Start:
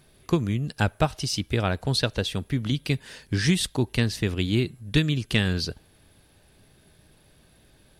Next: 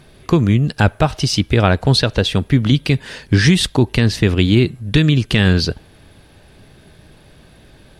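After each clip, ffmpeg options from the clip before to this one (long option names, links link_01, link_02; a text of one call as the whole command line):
ffmpeg -i in.wav -af "highshelf=frequency=6800:gain=-11.5,alimiter=level_in=13.5dB:limit=-1dB:release=50:level=0:latency=1,volume=-1dB" out.wav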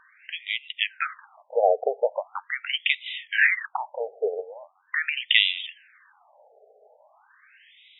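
ffmpeg -i in.wav -af "equalizer=frequency=125:width_type=o:width=0.33:gain=6,equalizer=frequency=2000:width_type=o:width=0.33:gain=4,equalizer=frequency=3150:width_type=o:width=0.33:gain=6,afftfilt=real='re*between(b*sr/1024,560*pow(2800/560,0.5+0.5*sin(2*PI*0.41*pts/sr))/1.41,560*pow(2800/560,0.5+0.5*sin(2*PI*0.41*pts/sr))*1.41)':imag='im*between(b*sr/1024,560*pow(2800/560,0.5+0.5*sin(2*PI*0.41*pts/sr))/1.41,560*pow(2800/560,0.5+0.5*sin(2*PI*0.41*pts/sr))*1.41)':win_size=1024:overlap=0.75" out.wav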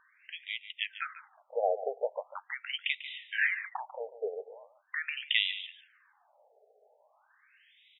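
ffmpeg -i in.wav -af "aecho=1:1:144:0.211,volume=-9dB" out.wav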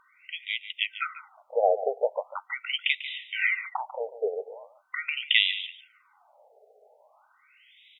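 ffmpeg -i in.wav -af "asuperstop=centerf=1700:order=8:qfactor=4.9,volume=6.5dB" -ar 48000 -c:a aac -b:a 192k out.aac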